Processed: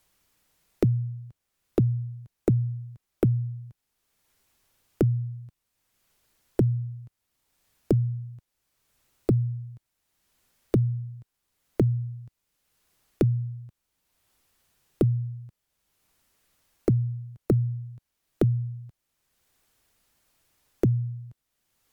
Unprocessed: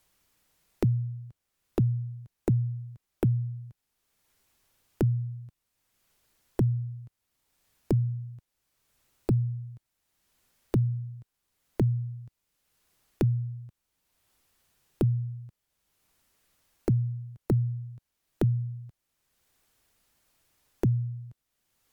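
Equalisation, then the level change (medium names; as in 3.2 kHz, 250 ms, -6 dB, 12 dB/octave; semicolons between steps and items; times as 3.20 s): dynamic bell 510 Hz, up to +6 dB, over -43 dBFS, Q 0.75; +1.0 dB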